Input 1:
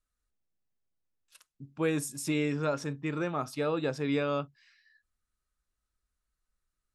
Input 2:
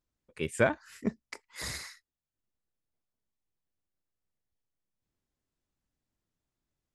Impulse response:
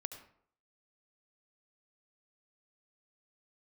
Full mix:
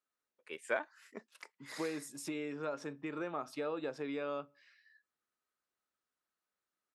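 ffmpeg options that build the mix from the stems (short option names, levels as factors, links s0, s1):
-filter_complex "[0:a]acompressor=threshold=0.02:ratio=6,volume=1,asplit=2[s0][s1];[s1]volume=0.0708[s2];[1:a]highpass=f=750:p=1,adelay=100,volume=0.596[s3];[2:a]atrim=start_sample=2205[s4];[s2][s4]afir=irnorm=-1:irlink=0[s5];[s0][s3][s5]amix=inputs=3:normalize=0,highpass=300,highshelf=f=3700:g=-9.5"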